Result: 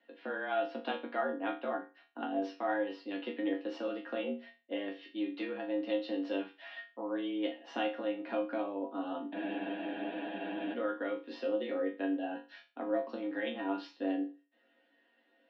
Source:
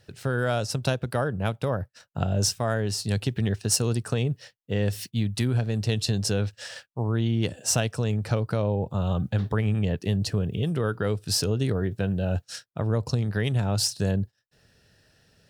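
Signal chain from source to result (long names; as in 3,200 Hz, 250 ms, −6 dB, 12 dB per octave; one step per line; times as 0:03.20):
resonators tuned to a chord D3 sus4, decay 0.31 s
single-sideband voice off tune +91 Hz 180–3,200 Hz
frozen spectrum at 0:09.35, 1.38 s
level +8.5 dB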